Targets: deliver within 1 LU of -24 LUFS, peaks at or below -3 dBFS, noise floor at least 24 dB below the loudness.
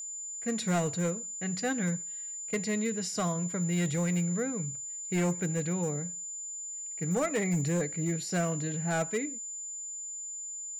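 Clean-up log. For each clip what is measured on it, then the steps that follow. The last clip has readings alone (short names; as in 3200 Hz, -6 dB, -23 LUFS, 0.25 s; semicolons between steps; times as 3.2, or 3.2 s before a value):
clipped 1.3%; flat tops at -23.5 dBFS; steady tone 7100 Hz; tone level -37 dBFS; loudness -31.5 LUFS; peak -23.5 dBFS; loudness target -24.0 LUFS
-> clip repair -23.5 dBFS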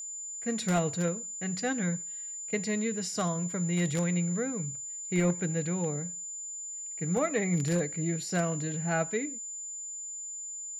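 clipped 0.0%; steady tone 7100 Hz; tone level -37 dBFS
-> notch 7100 Hz, Q 30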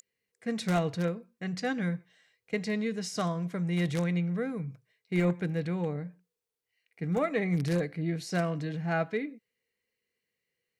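steady tone none; loudness -31.5 LUFS; peak -15.5 dBFS; loudness target -24.0 LUFS
-> gain +7.5 dB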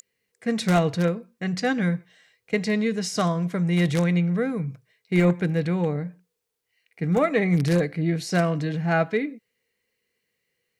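loudness -24.0 LUFS; peak -8.0 dBFS; noise floor -79 dBFS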